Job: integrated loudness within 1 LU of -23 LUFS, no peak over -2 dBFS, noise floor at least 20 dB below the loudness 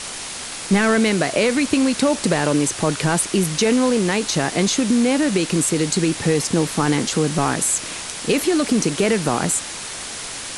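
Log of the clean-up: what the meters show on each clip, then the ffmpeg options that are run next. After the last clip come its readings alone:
noise floor -31 dBFS; noise floor target -40 dBFS; loudness -19.5 LUFS; peak -5.5 dBFS; loudness target -23.0 LUFS
-> -af "afftdn=nr=9:nf=-31"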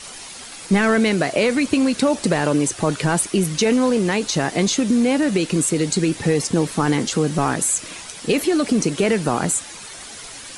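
noise floor -37 dBFS; noise floor target -40 dBFS
-> -af "afftdn=nr=6:nf=-37"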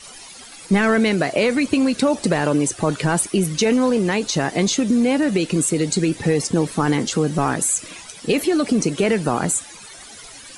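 noise floor -40 dBFS; loudness -19.5 LUFS; peak -6.5 dBFS; loudness target -23.0 LUFS
-> -af "volume=-3.5dB"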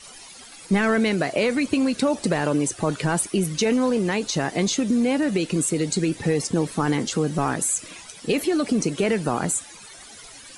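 loudness -23.0 LUFS; peak -10.0 dBFS; noise floor -44 dBFS

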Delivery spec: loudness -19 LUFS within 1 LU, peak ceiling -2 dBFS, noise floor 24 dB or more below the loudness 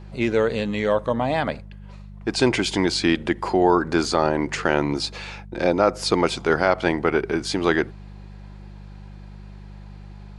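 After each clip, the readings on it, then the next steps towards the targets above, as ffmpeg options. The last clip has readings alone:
hum 50 Hz; harmonics up to 200 Hz; hum level -37 dBFS; loudness -22.0 LUFS; peak -3.5 dBFS; loudness target -19.0 LUFS
-> -af "bandreject=f=50:t=h:w=4,bandreject=f=100:t=h:w=4,bandreject=f=150:t=h:w=4,bandreject=f=200:t=h:w=4"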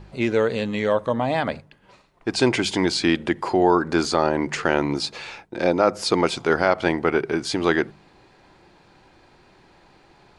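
hum none; loudness -22.0 LUFS; peak -3.5 dBFS; loudness target -19.0 LUFS
-> -af "volume=3dB,alimiter=limit=-2dB:level=0:latency=1"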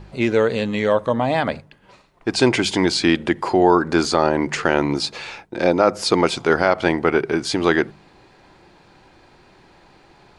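loudness -19.0 LUFS; peak -2.0 dBFS; noise floor -52 dBFS

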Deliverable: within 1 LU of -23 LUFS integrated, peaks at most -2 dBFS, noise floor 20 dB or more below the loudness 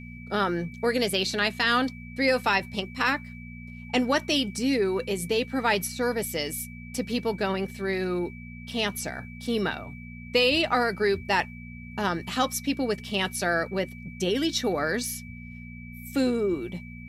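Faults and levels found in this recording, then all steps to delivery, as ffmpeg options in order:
hum 60 Hz; harmonics up to 240 Hz; hum level -39 dBFS; steady tone 2300 Hz; tone level -46 dBFS; loudness -27.0 LUFS; peak -11.0 dBFS; loudness target -23.0 LUFS
-> -af "bandreject=f=60:t=h:w=4,bandreject=f=120:t=h:w=4,bandreject=f=180:t=h:w=4,bandreject=f=240:t=h:w=4"
-af "bandreject=f=2.3k:w=30"
-af "volume=4dB"

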